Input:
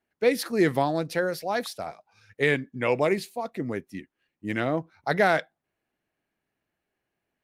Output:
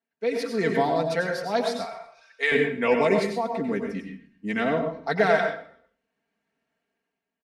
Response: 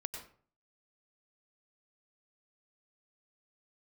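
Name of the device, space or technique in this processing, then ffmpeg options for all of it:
far laptop microphone: -filter_complex "[1:a]atrim=start_sample=2205[a];[0:a][a]afir=irnorm=-1:irlink=0,highpass=110,dynaudnorm=f=240:g=5:m=10dB,asettb=1/sr,asplit=3[b][c][d];[b]atrim=end=1.854[e];[c]atrim=start=1.85:end=2.52,asetpts=PTS-STARTPTS,afade=t=in:d=0.004:c=qsin,afade=t=out:st=0.666:d=0.004:c=qsin,highpass=830[f];[d]atrim=start=2.516[g];[e][f]acrossfade=d=0.004:c1=hsin:c2=qsin[h];[h][g]acrossfade=d=0.004:c1=qsin:c2=hsin,asplit=4[i][j][k][l];[j]adelay=127,afreqshift=-36,volume=-20dB[m];[k]adelay=254,afreqshift=-72,volume=-29.9dB[n];[l]adelay=381,afreqshift=-108,volume=-39.8dB[o];[i][m][n][o]amix=inputs=4:normalize=0,lowpass=7.2k,aecho=1:1:4.4:0.8,volume=-7dB"

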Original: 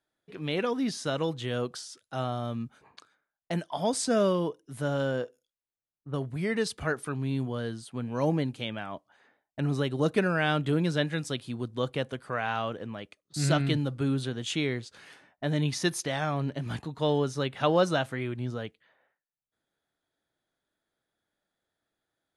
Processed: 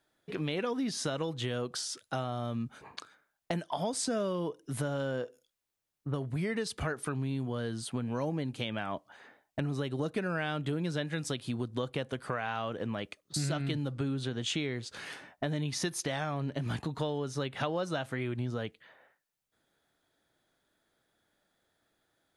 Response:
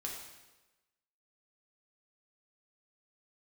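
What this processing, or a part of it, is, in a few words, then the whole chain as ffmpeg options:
serial compression, peaks first: -filter_complex "[0:a]asettb=1/sr,asplit=3[a][b][c];[a]atrim=end=13.924[d];[b]atrim=start=13.92:end=14.74,asetpts=PTS-STARTPTS,afade=t=in:d=0.004:c=qsin,afade=t=out:st=0.816:d=0.004:c=qsin,lowpass=8.7k[e];[c]atrim=start=14.736[f];[d][e]acrossfade=d=0.004:c1=hsin:c2=qsin[g];[g][f]acrossfade=d=0.004:c1=qsin:c2=hsin,acompressor=threshold=-36dB:ratio=4,acompressor=threshold=-43dB:ratio=1.5,volume=8dB"

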